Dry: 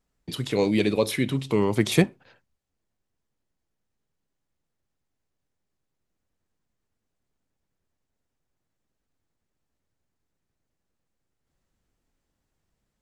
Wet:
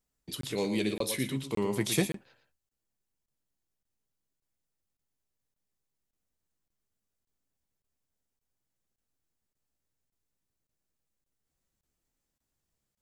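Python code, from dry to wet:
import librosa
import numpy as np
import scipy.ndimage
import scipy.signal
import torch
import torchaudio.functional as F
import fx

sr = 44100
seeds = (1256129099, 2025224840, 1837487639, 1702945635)

y = fx.high_shelf(x, sr, hz=5300.0, db=11.5)
y = fx.doubler(y, sr, ms=15.0, db=-11)
y = y + 10.0 ** (-9.0 / 20.0) * np.pad(y, (int(115 * sr / 1000.0), 0))[:len(y)]
y = fx.buffer_crackle(y, sr, first_s=0.41, period_s=0.57, block=1024, kind='zero')
y = F.gain(torch.from_numpy(y), -9.0).numpy()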